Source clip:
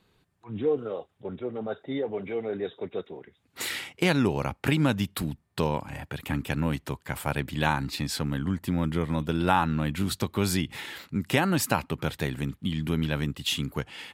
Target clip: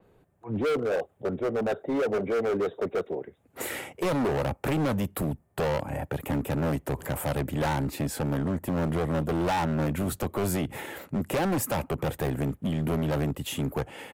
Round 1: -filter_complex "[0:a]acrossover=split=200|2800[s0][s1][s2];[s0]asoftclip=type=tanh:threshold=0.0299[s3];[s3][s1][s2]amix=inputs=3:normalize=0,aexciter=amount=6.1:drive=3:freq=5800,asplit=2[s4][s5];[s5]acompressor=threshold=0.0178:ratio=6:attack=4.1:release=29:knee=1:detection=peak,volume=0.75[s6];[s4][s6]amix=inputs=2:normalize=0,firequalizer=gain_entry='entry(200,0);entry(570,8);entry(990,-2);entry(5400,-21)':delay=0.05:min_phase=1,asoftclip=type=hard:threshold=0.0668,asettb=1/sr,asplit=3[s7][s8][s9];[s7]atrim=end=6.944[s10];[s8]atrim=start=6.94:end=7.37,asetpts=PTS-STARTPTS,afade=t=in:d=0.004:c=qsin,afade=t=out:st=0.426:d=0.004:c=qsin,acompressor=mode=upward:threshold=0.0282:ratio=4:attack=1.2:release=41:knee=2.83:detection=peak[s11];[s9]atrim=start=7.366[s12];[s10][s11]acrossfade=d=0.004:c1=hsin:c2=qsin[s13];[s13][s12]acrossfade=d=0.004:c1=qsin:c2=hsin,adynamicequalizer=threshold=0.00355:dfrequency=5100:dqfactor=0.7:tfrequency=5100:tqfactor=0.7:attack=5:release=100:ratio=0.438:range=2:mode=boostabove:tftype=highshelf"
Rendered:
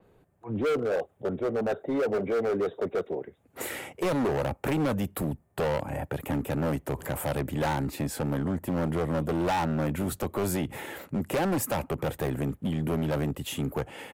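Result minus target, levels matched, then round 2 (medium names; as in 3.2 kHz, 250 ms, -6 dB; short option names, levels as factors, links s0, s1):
saturation: distortion +14 dB; compression: peak gain reduction +6 dB
-filter_complex "[0:a]acrossover=split=200|2800[s0][s1][s2];[s0]asoftclip=type=tanh:threshold=0.0944[s3];[s3][s1][s2]amix=inputs=3:normalize=0,aexciter=amount=6.1:drive=3:freq=5800,asplit=2[s4][s5];[s5]acompressor=threshold=0.0398:ratio=6:attack=4.1:release=29:knee=1:detection=peak,volume=0.75[s6];[s4][s6]amix=inputs=2:normalize=0,firequalizer=gain_entry='entry(200,0);entry(570,8);entry(990,-2);entry(5400,-21)':delay=0.05:min_phase=1,asoftclip=type=hard:threshold=0.0668,asettb=1/sr,asplit=3[s7][s8][s9];[s7]atrim=end=6.944[s10];[s8]atrim=start=6.94:end=7.37,asetpts=PTS-STARTPTS,afade=t=in:d=0.004:c=qsin,afade=t=out:st=0.426:d=0.004:c=qsin,acompressor=mode=upward:threshold=0.0282:ratio=4:attack=1.2:release=41:knee=2.83:detection=peak[s11];[s9]atrim=start=7.366[s12];[s10][s11]acrossfade=d=0.004:c1=hsin:c2=qsin[s13];[s13][s12]acrossfade=d=0.004:c1=qsin:c2=hsin,adynamicequalizer=threshold=0.00355:dfrequency=5100:dqfactor=0.7:tfrequency=5100:tqfactor=0.7:attack=5:release=100:ratio=0.438:range=2:mode=boostabove:tftype=highshelf"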